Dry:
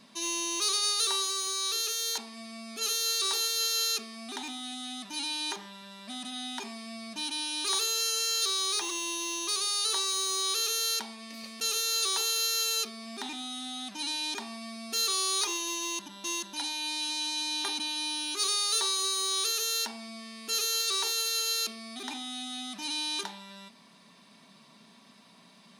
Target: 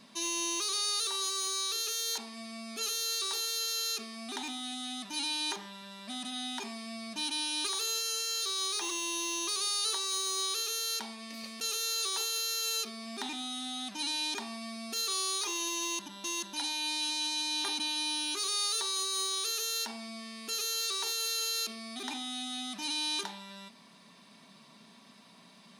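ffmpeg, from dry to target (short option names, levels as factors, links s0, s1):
-af "alimiter=limit=0.0708:level=0:latency=1:release=46"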